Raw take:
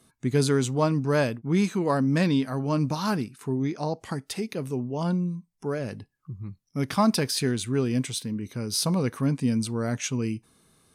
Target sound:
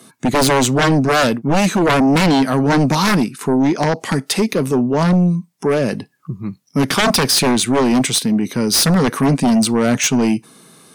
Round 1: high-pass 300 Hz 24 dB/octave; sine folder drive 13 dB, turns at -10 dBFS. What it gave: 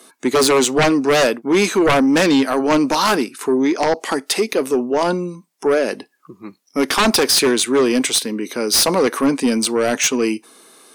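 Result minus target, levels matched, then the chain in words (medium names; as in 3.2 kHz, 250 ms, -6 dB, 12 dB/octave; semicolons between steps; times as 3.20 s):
125 Hz band -11.5 dB
high-pass 150 Hz 24 dB/octave; sine folder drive 13 dB, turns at -10 dBFS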